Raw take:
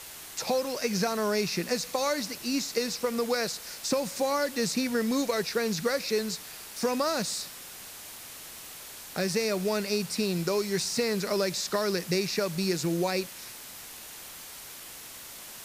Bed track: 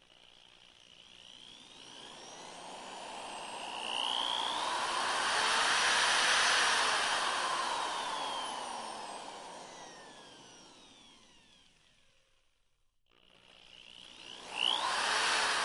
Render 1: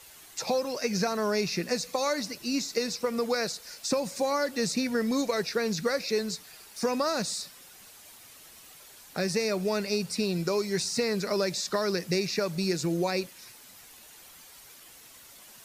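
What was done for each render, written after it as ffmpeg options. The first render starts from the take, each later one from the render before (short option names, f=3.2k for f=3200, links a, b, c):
-af "afftdn=nr=9:nf=-44"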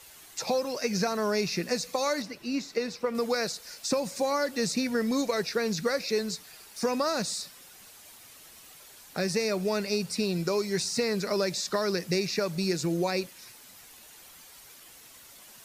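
-filter_complex "[0:a]asettb=1/sr,asplit=3[a][b][c];[a]atrim=end=2.224[d];[b]atrim=start=2.22:end=3.15,asetpts=PTS-STARTPTS,afade=t=in:d=0.004:c=qsin,afade=t=out:st=0.926:d=0.004:c=qsin,bass=f=250:g=-2,treble=f=4k:g=-11[e];[c]atrim=start=3.146[f];[d][e]acrossfade=d=0.004:c1=hsin:c2=qsin[g];[g][f]acrossfade=d=0.004:c1=qsin:c2=hsin"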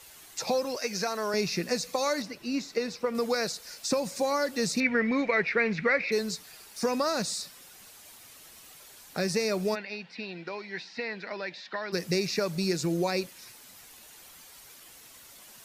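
-filter_complex "[0:a]asettb=1/sr,asplit=3[a][b][c];[a]atrim=end=0.764[d];[b]atrim=start=0.76:end=1.34,asetpts=PTS-STARTPTS,afade=t=in:d=0.004:c=qsin,afade=t=out:st=0.576:d=0.004:c=qsin,highpass=f=490:p=1[e];[c]atrim=start=1.336[f];[d][e]acrossfade=d=0.004:c1=hsin:c2=qsin[g];[g][f]acrossfade=d=0.004:c1=qsin:c2=hsin,asettb=1/sr,asplit=3[h][i][j];[h]atrim=end=4.804[k];[i]atrim=start=4.8:end=6.12,asetpts=PTS-STARTPTS,afade=t=in:d=0.004:c=qsin,afade=t=out:st=1.316:d=0.004:c=qsin,lowpass=f=2.2k:t=q:w=5.5[l];[j]atrim=start=6.116[m];[k][l]acrossfade=d=0.004:c1=hsin:c2=qsin[n];[n][m]acrossfade=d=0.004:c1=qsin:c2=hsin,asplit=3[o][p][q];[o]afade=t=out:st=9.74:d=0.02[r];[p]highpass=400,equalizer=f=410:t=q:w=4:g=-10,equalizer=f=580:t=q:w=4:g=-7,equalizer=f=1.2k:t=q:w=4:g=-10,equalizer=f=1.8k:t=q:w=4:g=4,lowpass=f=3.3k:w=0.5412,lowpass=f=3.3k:w=1.3066,afade=t=in:st=9.74:d=0.02,afade=t=out:st=11.92:d=0.02[s];[q]afade=t=in:st=11.92:d=0.02[t];[r][s][t]amix=inputs=3:normalize=0"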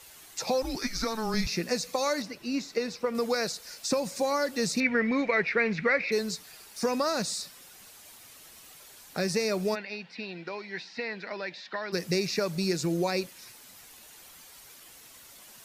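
-filter_complex "[0:a]asettb=1/sr,asplit=3[a][b][c];[a]atrim=end=0.624[d];[b]atrim=start=0.62:end=1.47,asetpts=PTS-STARTPTS,afade=t=in:d=0.004:c=qsin,afade=t=out:st=0.846:d=0.004:c=qsin,afreqshift=-220[e];[c]atrim=start=1.466[f];[d][e]acrossfade=d=0.004:c1=hsin:c2=qsin[g];[g][f]acrossfade=d=0.004:c1=qsin:c2=hsin"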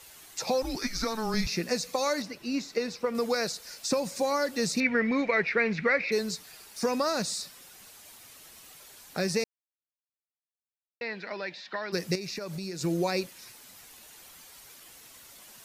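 -filter_complex "[0:a]asettb=1/sr,asplit=3[a][b][c];[a]atrim=end=12.154[d];[b]atrim=start=12.15:end=12.81,asetpts=PTS-STARTPTS,afade=t=in:d=0.004:c=qsin,afade=t=out:st=0.656:d=0.004:c=qsin,acompressor=threshold=-33dB:ratio=6:attack=3.2:release=140:knee=1:detection=peak[e];[c]atrim=start=12.806[f];[d][e]acrossfade=d=0.004:c1=hsin:c2=qsin[g];[g][f]acrossfade=d=0.004:c1=qsin:c2=hsin,asplit=3[h][i][j];[h]atrim=end=9.44,asetpts=PTS-STARTPTS,afade=t=out:st=9.436:d=0.004:c=hsin[k];[i]atrim=start=9.44:end=11.01,asetpts=PTS-STARTPTS,volume=0[l];[j]atrim=start=11.01,asetpts=PTS-STARTPTS,afade=t=in:d=0.004:c=hsin[m];[k][l][m]concat=n=3:v=0:a=1"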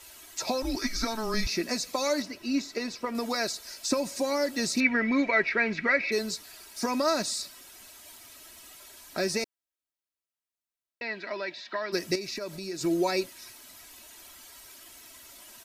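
-af "aecho=1:1:3.1:0.6"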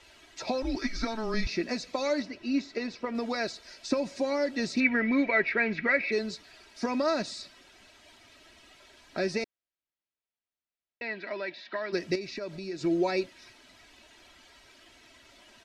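-af "lowpass=3.6k,equalizer=f=1.1k:w=2.1:g=-4.5"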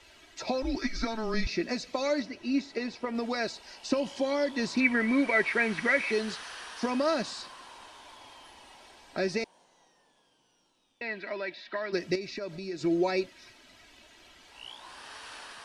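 -filter_complex "[1:a]volume=-15dB[a];[0:a][a]amix=inputs=2:normalize=0"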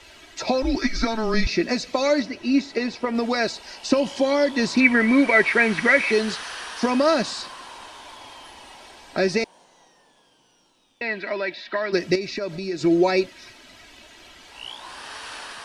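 -af "volume=8.5dB"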